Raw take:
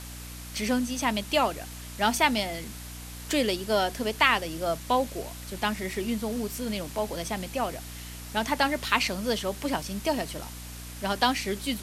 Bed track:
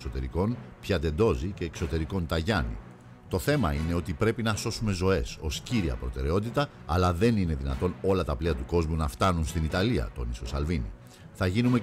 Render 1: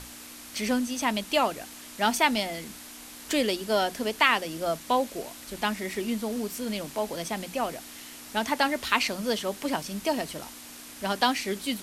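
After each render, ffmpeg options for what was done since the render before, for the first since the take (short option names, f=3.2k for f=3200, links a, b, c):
-af "bandreject=f=60:t=h:w=6,bandreject=f=120:t=h:w=6,bandreject=f=180:t=h:w=6"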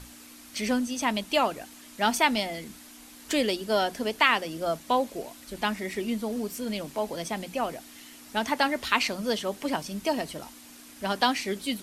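-af "afftdn=nr=6:nf=-45"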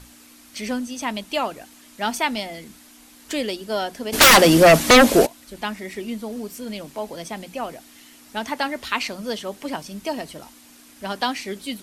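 -filter_complex "[0:a]asplit=3[a][b][c];[a]afade=t=out:st=4.12:d=0.02[d];[b]aeval=exprs='0.473*sin(PI/2*8.91*val(0)/0.473)':c=same,afade=t=in:st=4.12:d=0.02,afade=t=out:st=5.25:d=0.02[e];[c]afade=t=in:st=5.25:d=0.02[f];[d][e][f]amix=inputs=3:normalize=0"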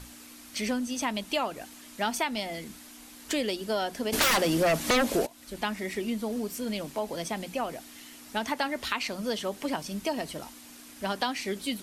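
-af "alimiter=limit=-10dB:level=0:latency=1:release=480,acompressor=threshold=-27dB:ratio=2.5"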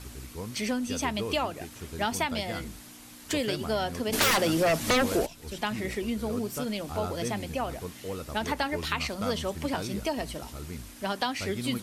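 -filter_complex "[1:a]volume=-11dB[a];[0:a][a]amix=inputs=2:normalize=0"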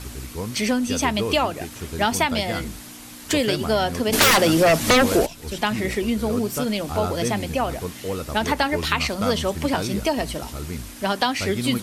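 -af "volume=8dB"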